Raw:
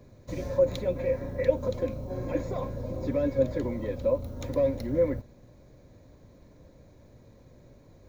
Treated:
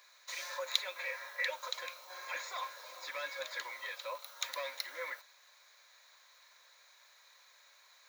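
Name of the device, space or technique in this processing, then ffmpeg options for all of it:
headphones lying on a table: -af "highpass=f=1.2k:w=0.5412,highpass=f=1.2k:w=1.3066,equalizer=f=3.9k:t=o:w=0.31:g=5,volume=8dB"

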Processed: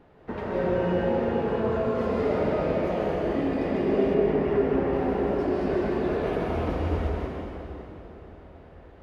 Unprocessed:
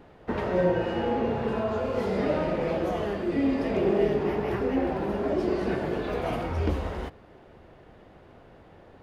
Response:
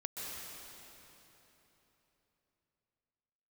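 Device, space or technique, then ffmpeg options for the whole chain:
swimming-pool hall: -filter_complex "[1:a]atrim=start_sample=2205[a];[0:a][a]afir=irnorm=-1:irlink=0,highshelf=f=4k:g=-6.5,asettb=1/sr,asplit=3[b][c][d];[b]atrim=end=4.144[e];[c]atrim=start=4.14:end=4.93,asetpts=PTS-STARTPTS,afade=t=in:d=0.004:c=qsin,afade=t=out:st=0.786:d=0.004:c=qsin,aemphasis=mode=reproduction:type=cd[f];[d]atrim=start=4.926[g];[e][f]acrossfade=d=0.004:c1=hsin:c2=qsin[h];[h][g]acrossfade=d=0.004:c1=qsin:c2=hsin"

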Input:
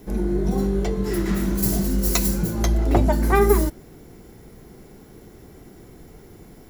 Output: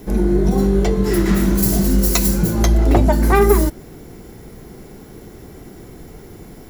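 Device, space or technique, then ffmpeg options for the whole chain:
clipper into limiter: -af "asoftclip=type=hard:threshold=-8.5dB,alimiter=limit=-11.5dB:level=0:latency=1:release=261,volume=7dB"

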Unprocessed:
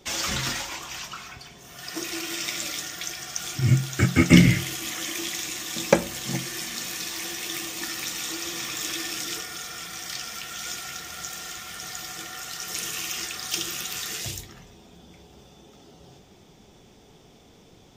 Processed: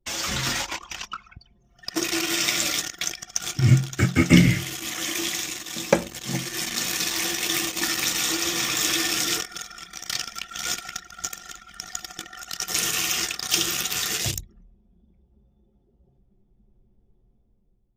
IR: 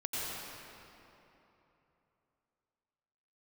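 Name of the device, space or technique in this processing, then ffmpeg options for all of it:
voice memo with heavy noise removal: -af "anlmdn=10,dynaudnorm=f=170:g=7:m=8.5dB,volume=-1dB"

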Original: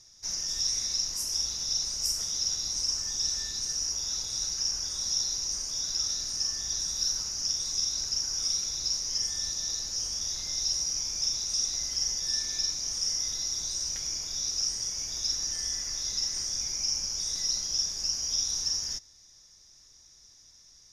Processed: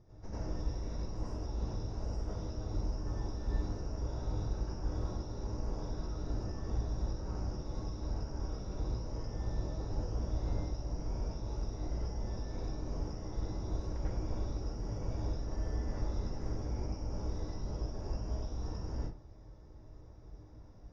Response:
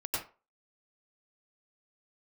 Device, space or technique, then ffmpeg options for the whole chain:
television next door: -filter_complex "[0:a]acompressor=threshold=-33dB:ratio=6,lowpass=550[a];[1:a]atrim=start_sample=2205[b];[a][b]afir=irnorm=-1:irlink=0,volume=13.5dB"

